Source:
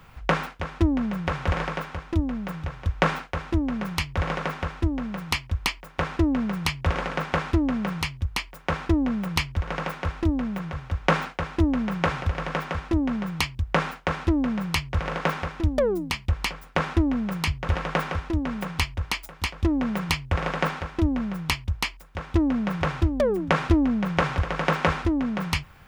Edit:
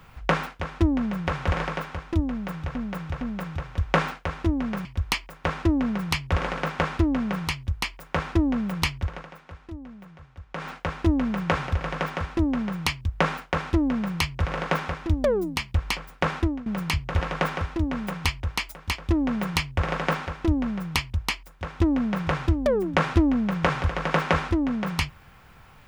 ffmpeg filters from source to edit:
-filter_complex "[0:a]asplit=7[a][b][c][d][e][f][g];[a]atrim=end=2.752[h];[b]atrim=start=2.288:end=2.752[i];[c]atrim=start=2.288:end=3.932[j];[d]atrim=start=5.388:end=9.8,asetpts=PTS-STARTPTS,afade=t=out:st=4.142:d=0.27:silence=0.177828[k];[e]atrim=start=9.8:end=11.11,asetpts=PTS-STARTPTS,volume=-15dB[l];[f]atrim=start=11.11:end=17.2,asetpts=PTS-STARTPTS,afade=t=in:d=0.27:silence=0.177828,afade=t=out:st=5.79:d=0.3:silence=0.125893[m];[g]atrim=start=17.2,asetpts=PTS-STARTPTS,afade=t=in:d=0.004:c=hsin:silence=0.125893[n];[h][i]acrossfade=d=0.004:c1=hsin:c2=hsin[o];[o][j]acrossfade=d=0.004:c1=hsin:c2=hsin[p];[k][l][m][n]concat=n=4:v=0:a=1[q];[p][q]acrossfade=d=0.004:c1=hsin:c2=hsin"

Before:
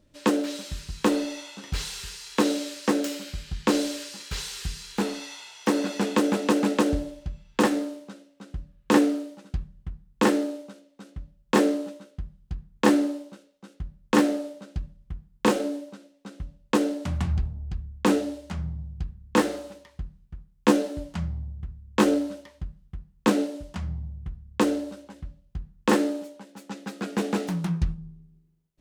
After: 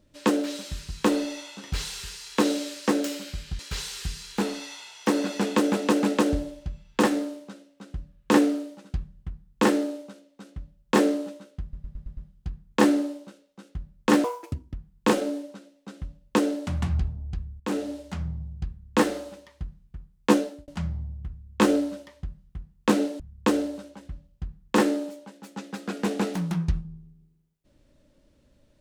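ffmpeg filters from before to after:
-filter_complex "[0:a]asplit=12[a][b][c][d][e][f][g][h][i][j][k][l];[a]atrim=end=3.592[m];[b]atrim=start=4.188:end=12.332[n];[c]atrim=start=12.218:end=12.332[o];[d]atrim=start=12.218:end=12.332[p];[e]atrim=start=12.218:end=12.332[q];[f]atrim=start=12.218:end=12.332[r];[g]atrim=start=12.218:end=14.294[s];[h]atrim=start=14.29:end=15.12,asetpts=PTS-STARTPTS,asetrate=73647,aresample=44100[t];[i]atrim=start=15.116:end=17.98,asetpts=PTS-STARTPTS,afade=t=out:st=2.86:d=0.004:c=hsin:silence=0.211349[u];[j]atrim=start=17.98:end=21.06,asetpts=PTS-STARTPTS,afade=t=in:d=0.41:silence=0.211349,afade=t=out:st=2.73:d=0.35[v];[k]atrim=start=21.06:end=23.582,asetpts=PTS-STARTPTS,afade=t=in:d=0.004:c=hsin[w];[l]atrim=start=24.328[x];[m][n]acrossfade=d=0.004:c1=hsin:c2=hsin[y];[y][o]acrossfade=d=0.004:c1=hsin:c2=hsin[z];[z][p]acrossfade=d=0.004:c1=hsin:c2=hsin[aa];[aa][q]acrossfade=d=0.004:c1=hsin:c2=hsin[ab];[ab][r]acrossfade=d=0.004:c1=hsin:c2=hsin[ac];[ac][s]acrossfade=d=0.004:c1=hsin:c2=hsin[ad];[ad][t]acrossfade=d=0.004:c1=hsin:c2=hsin[ae];[u][v][w]concat=n=3:v=0:a=1[af];[ae][af]acrossfade=d=0.004:c1=hsin:c2=hsin[ag];[ag][x]acrossfade=d=0.004:c1=hsin:c2=hsin"

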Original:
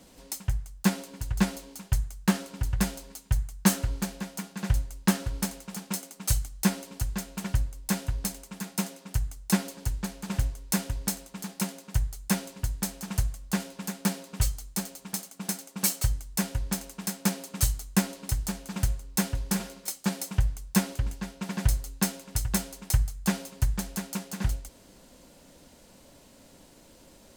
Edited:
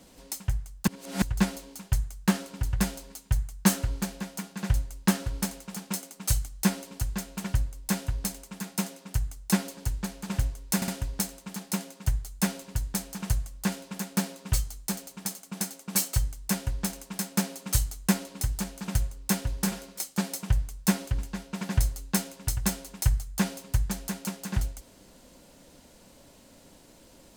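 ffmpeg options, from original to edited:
-filter_complex "[0:a]asplit=5[a][b][c][d][e];[a]atrim=end=0.872[f];[b]atrim=start=0.868:end=1.222,asetpts=PTS-STARTPTS,areverse[g];[c]atrim=start=1.218:end=10.822[h];[d]atrim=start=10.758:end=10.822[i];[e]atrim=start=10.758[j];[f][g]acrossfade=d=0.004:c1=hsin:c2=hsin[k];[k][h]acrossfade=d=0.004:c1=hsin:c2=hsin[l];[l][i]acrossfade=d=0.004:c1=hsin:c2=hsin[m];[m][j]acrossfade=d=0.004:c1=hsin:c2=hsin"

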